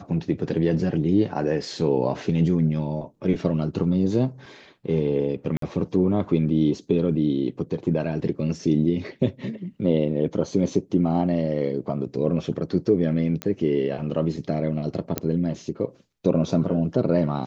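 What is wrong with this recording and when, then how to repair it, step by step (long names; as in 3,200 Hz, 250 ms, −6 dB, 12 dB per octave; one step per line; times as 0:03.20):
0:05.57–0:05.62: drop-out 53 ms
0:13.42: click −14 dBFS
0:15.18: click −8 dBFS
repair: click removal
repair the gap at 0:05.57, 53 ms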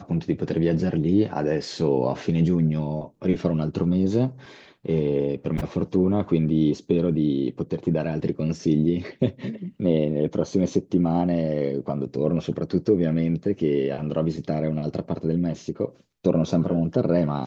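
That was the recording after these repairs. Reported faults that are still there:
none of them is left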